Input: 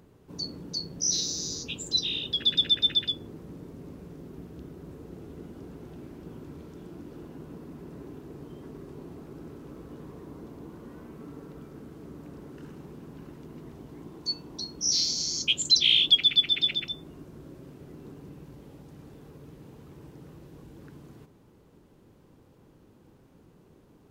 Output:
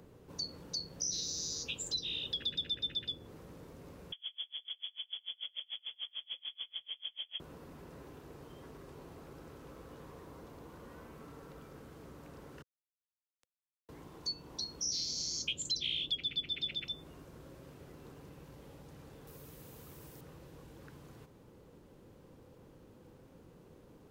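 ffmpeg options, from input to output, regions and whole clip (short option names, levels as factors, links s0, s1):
-filter_complex "[0:a]asettb=1/sr,asplit=3[s0][s1][s2];[s0]atrim=end=4.124[s3];[s1]atrim=start=4.12:end=7.4,asetpts=PTS-STARTPTS,afade=t=in:d=0.004:c=qsin,afade=t=out:st=3.276:d=0.004:c=qsin,lowpass=f=3000:t=q:w=0.5098,lowpass=f=3000:t=q:w=0.6013,lowpass=f=3000:t=q:w=0.9,lowpass=f=3000:t=q:w=2.563,afreqshift=-3500,acontrast=59,aeval=exprs='val(0)*pow(10,-35*(0.5-0.5*cos(2*PI*6.8*n/s))/20)':c=same[s4];[s2]atrim=start=7.396[s5];[s3][s4]acrossfade=d=0.004:c1=hsin:c2=qsin[s6];[s6][s5]acrossfade=d=0.004:c1=qsin:c2=hsin,asettb=1/sr,asplit=3[s7][s8][s9];[s7]atrim=end=12.624[s10];[s8]atrim=start=12.62:end=13.89,asetpts=PTS-STARTPTS,afade=t=in:d=0.004:c=qsin,afade=t=out:st=1.266:d=0.004:c=qsin,aderivative,acrusher=bits=6:dc=4:mix=0:aa=0.000001[s11];[s9]atrim=start=13.886[s12];[s10][s11]acrossfade=d=0.004:c1=hsin:c2=qsin[s13];[s13][s12]acrossfade=d=0.004:c1=qsin:c2=hsin,asettb=1/sr,asplit=3[s14][s15][s16];[s14]atrim=end=19.274[s17];[s15]atrim=start=19.27:end=20.21,asetpts=PTS-STARTPTS,afade=t=in:d=0.004:c=qsin,afade=t=out:st=0.936:d=0.004:c=qsin,aemphasis=mode=production:type=50fm,bandreject=f=870:w=22[s18];[s16]atrim=start=20.206[s19];[s17][s18]acrossfade=d=0.004:c1=hsin:c2=qsin[s20];[s20][s19]acrossfade=d=0.004:c1=qsin:c2=hsin,equalizer=f=510:w=5.1:g=7,acrossover=split=120|650[s21][s22][s23];[s21]acompressor=threshold=0.00158:ratio=4[s24];[s22]acompressor=threshold=0.00141:ratio=4[s25];[s23]acompressor=threshold=0.0158:ratio=4[s26];[s24][s25][s26]amix=inputs=3:normalize=0"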